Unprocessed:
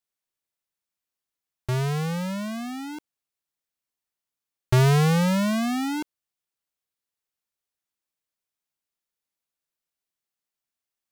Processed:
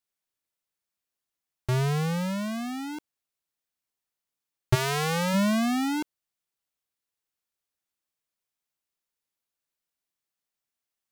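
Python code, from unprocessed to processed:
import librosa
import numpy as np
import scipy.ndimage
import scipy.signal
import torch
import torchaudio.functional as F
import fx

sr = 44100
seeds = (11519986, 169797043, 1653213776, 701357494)

y = fx.highpass(x, sr, hz=fx.line((4.74, 1200.0), (5.33, 330.0)), slope=6, at=(4.74, 5.33), fade=0.02)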